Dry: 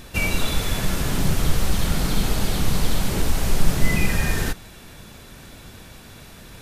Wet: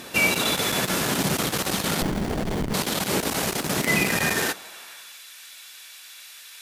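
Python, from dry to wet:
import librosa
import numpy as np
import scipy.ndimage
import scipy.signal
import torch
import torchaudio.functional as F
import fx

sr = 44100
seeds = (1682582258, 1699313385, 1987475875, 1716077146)

y = fx.cheby_harmonics(x, sr, harmonics=(2, 4, 5), levels_db=(-10, -11, -9), full_scale_db=-3.0)
y = fx.filter_sweep_highpass(y, sr, from_hz=230.0, to_hz=2200.0, start_s=4.31, end_s=5.2, q=0.7)
y = fx.running_max(y, sr, window=33, at=(2.02, 2.74))
y = y * librosa.db_to_amplitude(-3.5)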